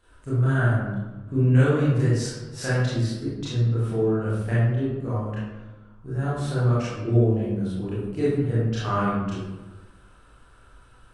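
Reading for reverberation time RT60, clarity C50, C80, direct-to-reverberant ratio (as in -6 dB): 1.2 s, -2.5 dB, 1.0 dB, -11.0 dB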